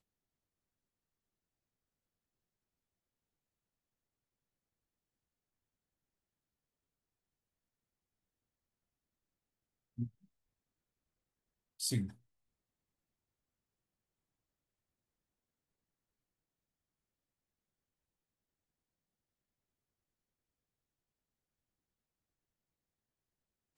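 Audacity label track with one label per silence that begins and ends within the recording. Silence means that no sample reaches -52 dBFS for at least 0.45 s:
10.080000	11.800000	silence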